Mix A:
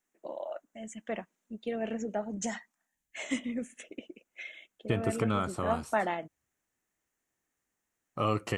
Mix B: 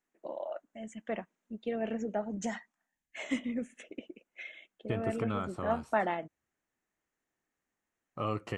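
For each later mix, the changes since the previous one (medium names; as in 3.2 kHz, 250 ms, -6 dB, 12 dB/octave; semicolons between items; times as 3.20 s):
second voice -4.5 dB; master: add treble shelf 5.6 kHz -12 dB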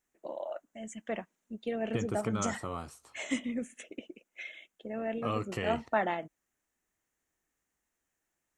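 second voice: entry -2.95 s; master: add treble shelf 5.6 kHz +12 dB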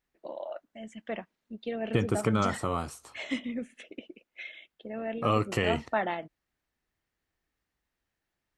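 first voice: add resonant high shelf 5.6 kHz -6.5 dB, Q 3; second voice +7.5 dB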